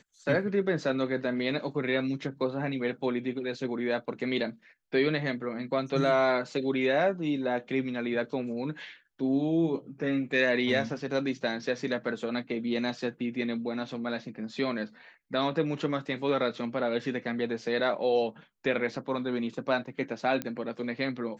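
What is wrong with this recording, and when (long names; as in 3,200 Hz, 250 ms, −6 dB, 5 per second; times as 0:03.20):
0:20.42: click −17 dBFS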